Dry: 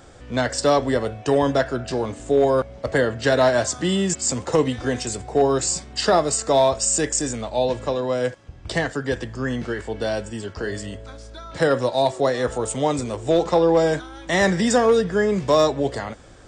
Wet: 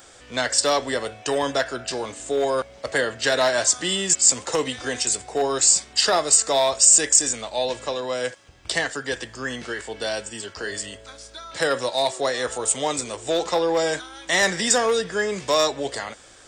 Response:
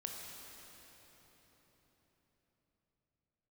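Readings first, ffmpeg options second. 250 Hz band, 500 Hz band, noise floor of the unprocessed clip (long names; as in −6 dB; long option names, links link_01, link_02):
−8.5 dB, −4.5 dB, −43 dBFS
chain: -af "bass=frequency=250:gain=-8,treble=frequency=4000:gain=-6,acontrast=32,crystalizer=i=7.5:c=0,volume=-10dB"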